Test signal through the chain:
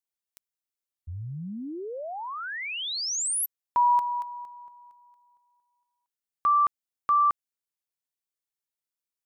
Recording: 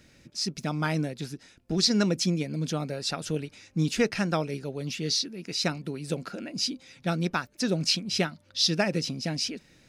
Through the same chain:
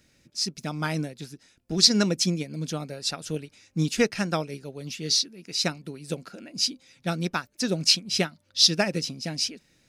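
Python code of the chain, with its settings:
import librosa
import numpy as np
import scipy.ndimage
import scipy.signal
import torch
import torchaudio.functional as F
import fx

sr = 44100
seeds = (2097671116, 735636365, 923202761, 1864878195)

y = fx.high_shelf(x, sr, hz=4800.0, db=6.5)
y = fx.upward_expand(y, sr, threshold_db=-38.0, expansion=1.5)
y = y * librosa.db_to_amplitude(4.0)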